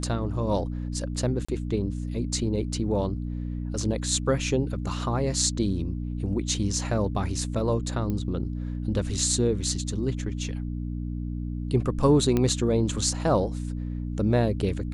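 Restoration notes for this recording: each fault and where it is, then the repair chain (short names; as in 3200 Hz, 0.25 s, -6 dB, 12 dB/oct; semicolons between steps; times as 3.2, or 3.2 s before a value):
hum 60 Hz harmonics 5 -31 dBFS
1.45–1.49 gap 35 ms
8.1 pop -19 dBFS
12.37 pop -12 dBFS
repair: de-click; de-hum 60 Hz, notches 5; interpolate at 1.45, 35 ms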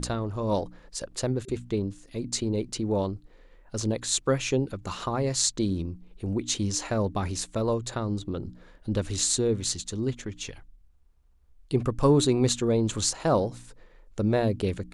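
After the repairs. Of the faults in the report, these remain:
none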